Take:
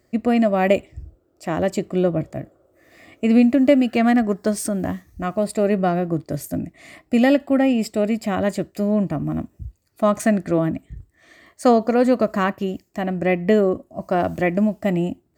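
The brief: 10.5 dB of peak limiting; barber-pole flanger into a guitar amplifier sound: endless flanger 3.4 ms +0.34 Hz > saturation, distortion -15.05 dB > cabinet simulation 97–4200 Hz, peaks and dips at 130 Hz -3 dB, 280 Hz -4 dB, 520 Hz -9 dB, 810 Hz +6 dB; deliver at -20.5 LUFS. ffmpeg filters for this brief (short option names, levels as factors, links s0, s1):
-filter_complex "[0:a]alimiter=limit=0.188:level=0:latency=1,asplit=2[s0][s1];[s1]adelay=3.4,afreqshift=0.34[s2];[s0][s2]amix=inputs=2:normalize=1,asoftclip=threshold=0.0944,highpass=97,equalizer=f=130:t=q:w=4:g=-3,equalizer=f=280:t=q:w=4:g=-4,equalizer=f=520:t=q:w=4:g=-9,equalizer=f=810:t=q:w=4:g=6,lowpass=f=4200:w=0.5412,lowpass=f=4200:w=1.3066,volume=3.55"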